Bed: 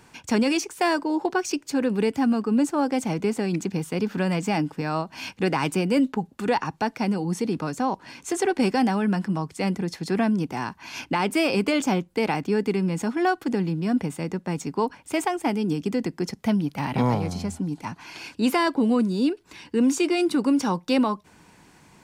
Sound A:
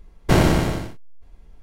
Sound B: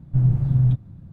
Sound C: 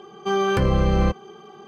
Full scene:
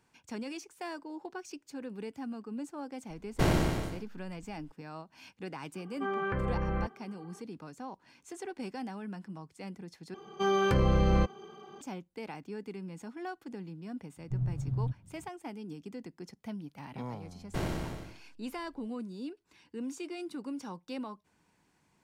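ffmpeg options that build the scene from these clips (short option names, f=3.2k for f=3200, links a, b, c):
-filter_complex "[1:a]asplit=2[a][b];[3:a]asplit=2[c][d];[0:a]volume=-18dB[e];[c]lowpass=f=1.8k:t=q:w=2[f];[e]asplit=2[g][h];[g]atrim=end=10.144[i];[d]atrim=end=1.67,asetpts=PTS-STARTPTS,volume=-6dB[j];[h]atrim=start=11.806[k];[a]atrim=end=1.62,asetpts=PTS-STARTPTS,volume=-10.5dB,afade=t=in:d=0.004:c=hsin,afade=t=out:st=1.616:d=0.004:c=hsin,adelay=3100[l];[f]atrim=end=1.67,asetpts=PTS-STARTPTS,volume=-13.5dB,afade=t=in:d=0.004:c=hsin,afade=t=out:st=1.666:d=0.004:c=hsin,adelay=5750[m];[2:a]atrim=end=1.12,asetpts=PTS-STARTPTS,volume=-14.5dB,afade=t=in:d=0.004:c=hsin,afade=t=out:st=1.116:d=0.004:c=hsin,adelay=14170[n];[b]atrim=end=1.62,asetpts=PTS-STARTPTS,volume=-18dB,afade=t=in:d=0.004:c=hsin,afade=t=out:st=1.616:d=0.004:c=hsin,adelay=17250[o];[i][j]acrossfade=d=0.004:c1=hsin:c2=hsin[p];[p][k]acrossfade=d=0.004:c1=hsin:c2=hsin[q];[q][l][m][n][o]amix=inputs=5:normalize=0"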